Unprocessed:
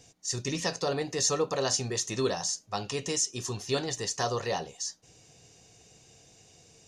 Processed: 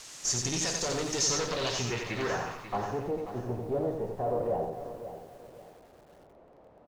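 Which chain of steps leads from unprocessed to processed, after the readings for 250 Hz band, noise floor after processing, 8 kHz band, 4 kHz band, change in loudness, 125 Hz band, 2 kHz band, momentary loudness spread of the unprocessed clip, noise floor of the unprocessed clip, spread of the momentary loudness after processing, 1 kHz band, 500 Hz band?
0.0 dB, -57 dBFS, -1.5 dB, -1.5 dB, -1.0 dB, -0.5 dB, +0.5 dB, 7 LU, -58 dBFS, 15 LU, +0.5 dB, 0.0 dB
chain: gate with hold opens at -45 dBFS; in parallel at -9.5 dB: word length cut 6-bit, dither triangular; on the sum: valve stage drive 33 dB, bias 0.8; low-pass sweep 6.8 kHz -> 600 Hz, 1.14–3.15 s; on a send: feedback delay 89 ms, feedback 26%, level -5 dB; on the sum: bit-crushed delay 539 ms, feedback 35%, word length 9-bit, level -11 dB; trim +2.5 dB

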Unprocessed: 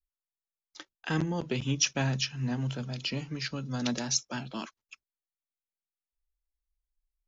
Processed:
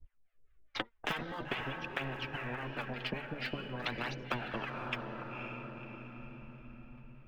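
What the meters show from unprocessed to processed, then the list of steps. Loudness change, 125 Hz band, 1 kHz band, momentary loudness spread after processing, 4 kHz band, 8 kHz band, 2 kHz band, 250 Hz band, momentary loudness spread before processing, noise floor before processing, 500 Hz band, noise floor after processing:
-8.0 dB, -10.5 dB, +1.5 dB, 12 LU, -8.0 dB, no reading, +0.5 dB, -9.0 dB, 14 LU, under -85 dBFS, -2.5 dB, -67 dBFS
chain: low-pass 2.3 kHz 24 dB/octave; bass shelf 160 Hz +8 dB; compression 2.5:1, threshold -45 dBFS, peak gain reduction 15.5 dB; transient shaper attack +10 dB, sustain -5 dB; gain riding within 3 dB; flange 1.9 Hz, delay 6.4 ms, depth 3.1 ms, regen +46%; rotary cabinet horn 0.65 Hz; vibrato 3.1 Hz 7.6 cents; phaser 0.48 Hz, delay 5 ms, feedback 55%; harmonic tremolo 4.8 Hz, depth 100%, crossover 650 Hz; echo that smears into a reverb 519 ms, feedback 45%, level -14 dB; spectrum-flattening compressor 4:1; trim +11 dB

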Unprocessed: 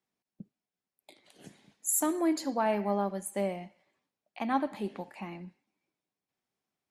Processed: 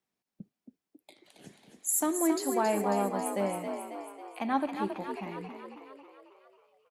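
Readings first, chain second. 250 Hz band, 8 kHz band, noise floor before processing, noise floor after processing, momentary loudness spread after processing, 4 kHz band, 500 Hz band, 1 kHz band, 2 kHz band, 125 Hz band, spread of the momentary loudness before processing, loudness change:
+1.0 dB, +1.0 dB, under -85 dBFS, under -85 dBFS, 16 LU, +1.5 dB, +1.5 dB, +2.0 dB, +1.5 dB, 0.0 dB, 15 LU, +0.5 dB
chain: frequency-shifting echo 272 ms, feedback 57%, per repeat +51 Hz, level -6.5 dB

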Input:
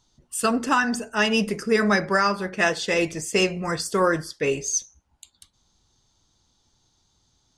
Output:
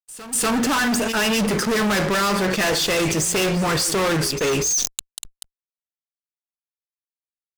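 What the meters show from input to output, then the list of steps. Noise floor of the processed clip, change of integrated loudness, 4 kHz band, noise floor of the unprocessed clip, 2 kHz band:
under -85 dBFS, +3.0 dB, +6.5 dB, -68 dBFS, +1.0 dB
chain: fuzz box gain 35 dB, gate -43 dBFS; pre-echo 243 ms -17 dB; decay stretcher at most 32 dB/s; trim -5.5 dB

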